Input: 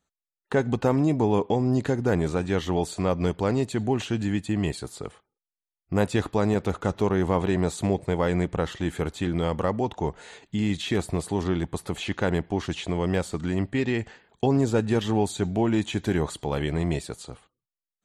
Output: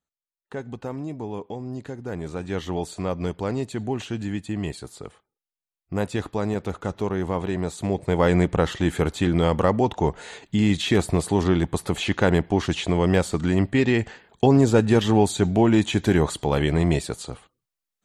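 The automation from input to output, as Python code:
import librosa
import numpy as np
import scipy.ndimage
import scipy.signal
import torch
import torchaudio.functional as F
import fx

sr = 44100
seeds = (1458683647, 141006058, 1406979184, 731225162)

y = fx.gain(x, sr, db=fx.line((2.01, -10.0), (2.58, -2.5), (7.79, -2.5), (8.25, 5.5)))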